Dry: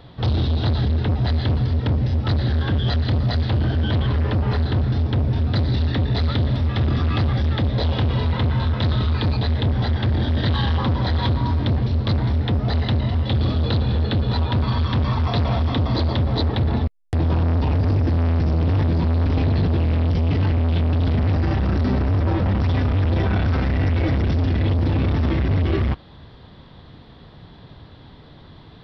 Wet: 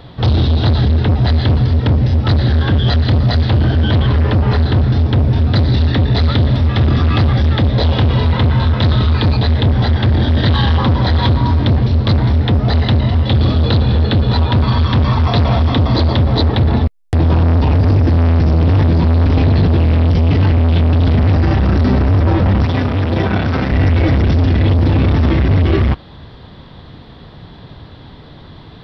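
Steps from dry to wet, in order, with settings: 22.65–23.72 s: high-pass 110 Hz; trim +7.5 dB

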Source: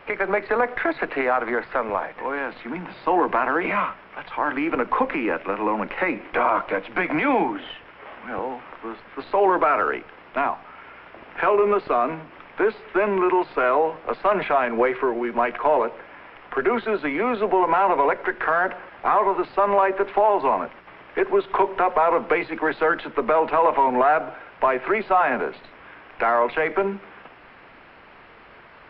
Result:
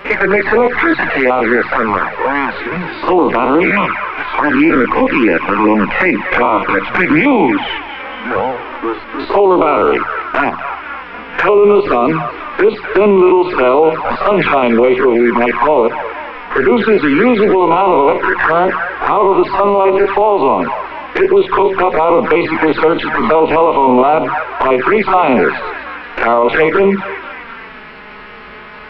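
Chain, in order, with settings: spectrogram pixelated in time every 50 ms; peaking EQ 680 Hz -6 dB 0.51 oct; thinning echo 245 ms, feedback 64%, high-pass 880 Hz, level -10.5 dB; touch-sensitive flanger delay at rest 5.5 ms, full sweep at -20 dBFS; loudness maximiser +20.5 dB; trim -1 dB

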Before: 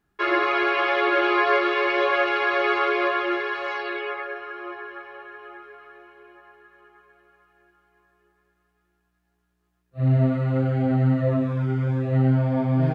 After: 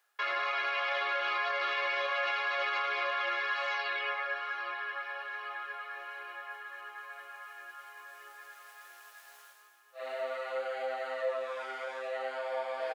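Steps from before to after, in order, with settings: elliptic high-pass 510 Hz, stop band 70 dB; treble shelf 2 kHz +10 dB; in parallel at 0 dB: compression 6:1, threshold -35 dBFS, peak gain reduction 18.5 dB; on the sum: peak limiter -15.5 dBFS, peak gain reduction 9.5 dB; reverse; upward compressor, threshold -28 dBFS; reverse; short-mantissa float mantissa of 8-bit; feedback delay 809 ms, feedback 52%, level -14 dB; trim -8.5 dB

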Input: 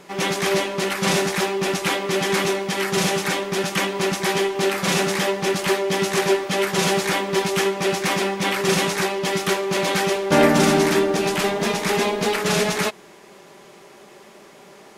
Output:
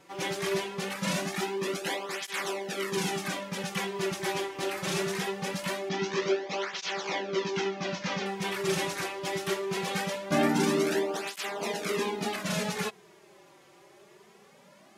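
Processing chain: 5.89–8.26 s: steep low-pass 6.4 kHz 48 dB/octave; cancelling through-zero flanger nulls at 0.22 Hz, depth 4.9 ms; trim -7.5 dB

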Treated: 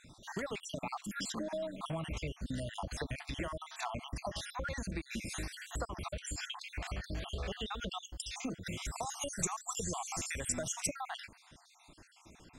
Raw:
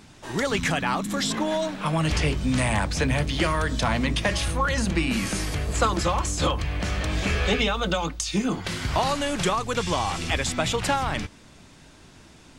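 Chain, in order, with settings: random holes in the spectrogram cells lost 59%; dynamic bell 650 Hz, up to +5 dB, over -45 dBFS, Q 5.3; compression 6:1, threshold -31 dBFS, peak gain reduction 14 dB; 8.85–10.87 s: resonant high shelf 5.3 kHz +7.5 dB, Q 3; trim -5 dB

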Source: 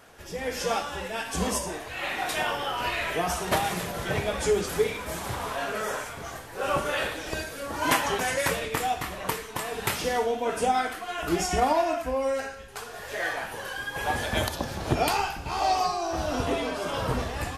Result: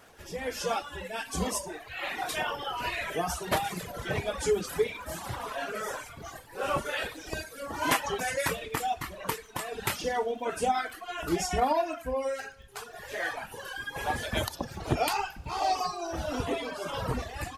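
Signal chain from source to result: reverb removal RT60 1.3 s; crackle 38 per s -45 dBFS; trim -2 dB

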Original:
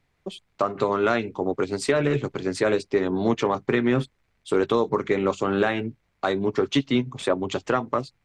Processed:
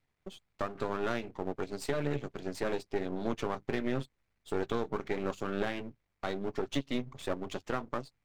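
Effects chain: partial rectifier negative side -12 dB; trim -8 dB

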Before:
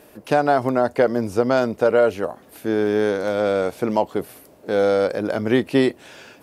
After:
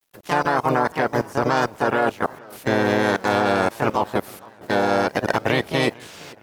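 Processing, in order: spectral peaks clipped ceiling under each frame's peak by 14 dB; dynamic bell 900 Hz, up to +6 dB, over -35 dBFS, Q 2.6; level held to a coarse grid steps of 23 dB; bit crusher 10-bit; harmony voices +3 st -4 dB; modulated delay 460 ms, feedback 48%, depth 189 cents, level -23.5 dB; trim +2.5 dB

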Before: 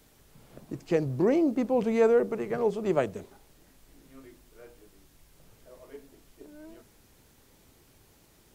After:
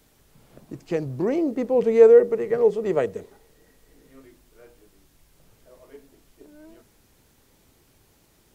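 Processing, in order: 1.38–4.22 s: small resonant body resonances 460/1900 Hz, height 11 dB

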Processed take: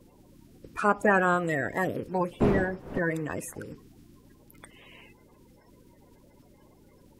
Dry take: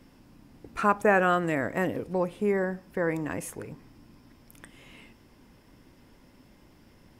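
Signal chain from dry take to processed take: coarse spectral quantiser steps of 30 dB; 2.40–2.98 s: wind noise 430 Hz -28 dBFS

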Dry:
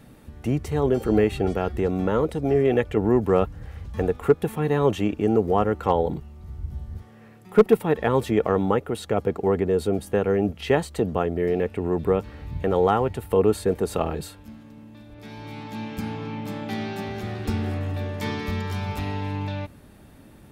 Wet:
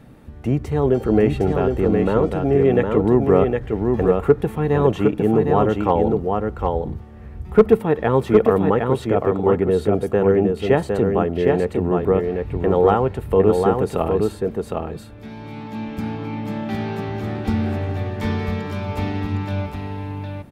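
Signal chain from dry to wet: treble shelf 3.2 kHz -9.5 dB; delay 760 ms -4 dB; on a send at -21 dB: reverberation RT60 0.65 s, pre-delay 4 ms; on the sum: trim +3.5 dB

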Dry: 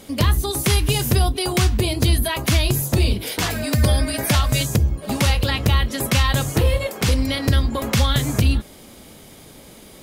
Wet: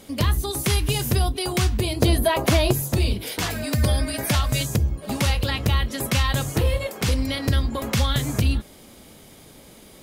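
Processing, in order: 2.02–2.73 s: peaking EQ 580 Hz +11 dB 2.1 oct; trim -3.5 dB

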